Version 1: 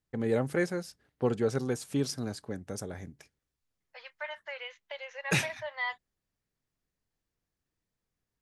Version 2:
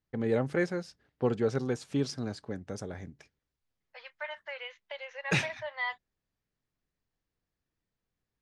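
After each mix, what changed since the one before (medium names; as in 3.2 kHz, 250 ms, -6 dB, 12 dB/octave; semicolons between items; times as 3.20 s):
master: add low-pass 5.5 kHz 12 dB/octave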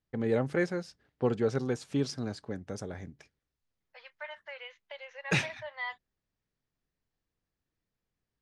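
second voice -3.5 dB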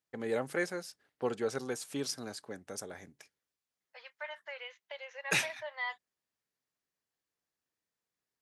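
first voice: add high-pass 610 Hz 6 dB/octave; master: remove low-pass 5.5 kHz 12 dB/octave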